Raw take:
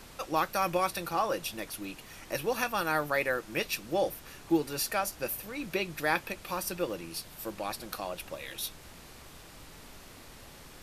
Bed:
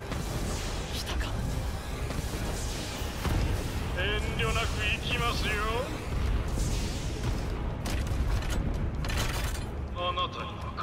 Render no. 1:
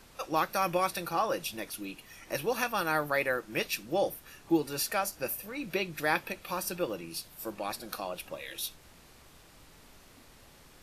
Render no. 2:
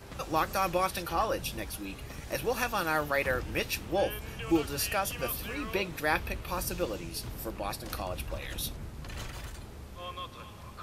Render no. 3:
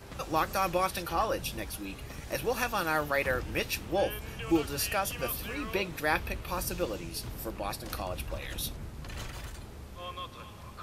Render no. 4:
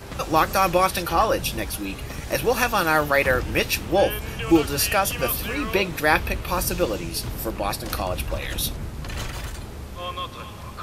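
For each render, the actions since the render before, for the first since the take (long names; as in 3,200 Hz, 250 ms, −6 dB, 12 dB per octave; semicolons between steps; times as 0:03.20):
noise reduction from a noise print 6 dB
mix in bed −10.5 dB
no processing that can be heard
level +9.5 dB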